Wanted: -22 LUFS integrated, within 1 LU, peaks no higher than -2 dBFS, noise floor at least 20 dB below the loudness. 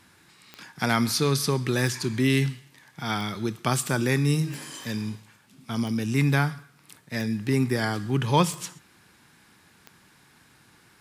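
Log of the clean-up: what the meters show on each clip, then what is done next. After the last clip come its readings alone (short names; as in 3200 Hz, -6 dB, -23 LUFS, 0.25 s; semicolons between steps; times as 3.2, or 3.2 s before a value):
clicks 8; loudness -26.0 LUFS; peak -6.5 dBFS; loudness target -22.0 LUFS
-> de-click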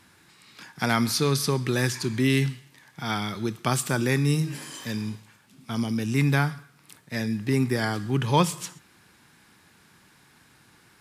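clicks 0; loudness -26.0 LUFS; peak -6.5 dBFS; loudness target -22.0 LUFS
-> gain +4 dB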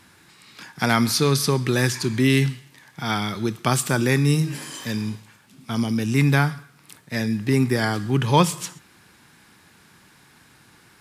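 loudness -22.0 LUFS; peak -2.5 dBFS; noise floor -54 dBFS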